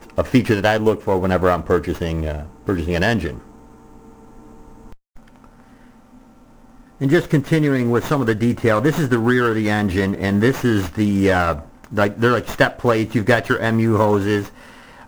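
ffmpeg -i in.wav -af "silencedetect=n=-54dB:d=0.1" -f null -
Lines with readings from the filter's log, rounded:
silence_start: 4.97
silence_end: 5.16 | silence_duration: 0.18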